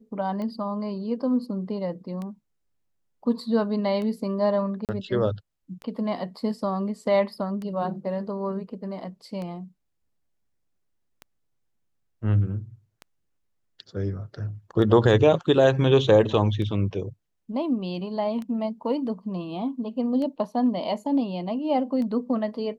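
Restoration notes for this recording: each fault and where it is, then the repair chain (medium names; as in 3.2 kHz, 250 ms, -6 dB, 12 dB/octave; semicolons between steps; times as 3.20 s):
tick 33 1/3 rpm -23 dBFS
4.85–4.89 s: dropout 38 ms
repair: de-click; interpolate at 4.85 s, 38 ms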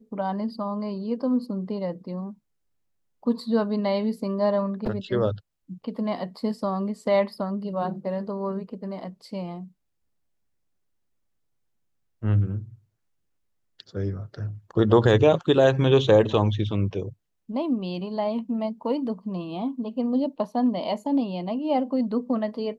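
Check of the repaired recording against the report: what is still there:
nothing left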